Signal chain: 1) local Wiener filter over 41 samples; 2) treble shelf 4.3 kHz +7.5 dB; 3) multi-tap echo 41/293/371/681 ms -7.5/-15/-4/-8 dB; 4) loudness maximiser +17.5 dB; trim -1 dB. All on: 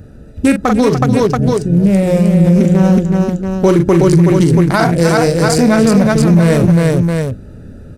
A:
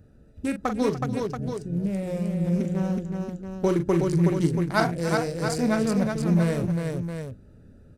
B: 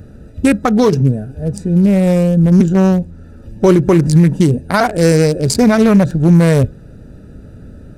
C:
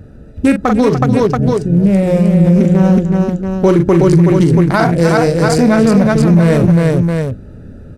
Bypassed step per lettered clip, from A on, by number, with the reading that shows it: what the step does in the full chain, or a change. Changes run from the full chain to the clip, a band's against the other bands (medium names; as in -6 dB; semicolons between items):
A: 4, crest factor change +9.5 dB; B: 3, momentary loudness spread change +2 LU; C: 2, 8 kHz band -5.0 dB